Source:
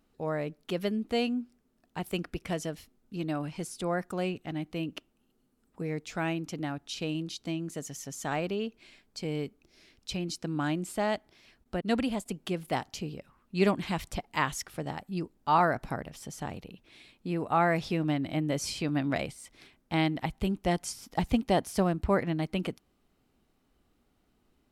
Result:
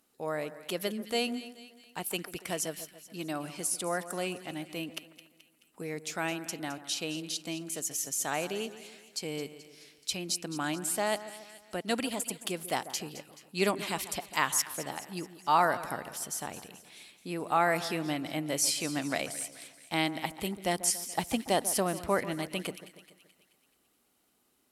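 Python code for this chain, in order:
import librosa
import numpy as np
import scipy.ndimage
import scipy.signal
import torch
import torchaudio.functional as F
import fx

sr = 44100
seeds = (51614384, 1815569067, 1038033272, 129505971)

p1 = fx.highpass(x, sr, hz=390.0, slope=6)
p2 = fx.peak_eq(p1, sr, hz=11000.0, db=14.0, octaves=1.5)
y = p2 + fx.echo_split(p2, sr, split_hz=1700.0, low_ms=142, high_ms=215, feedback_pct=52, wet_db=-14.0, dry=0)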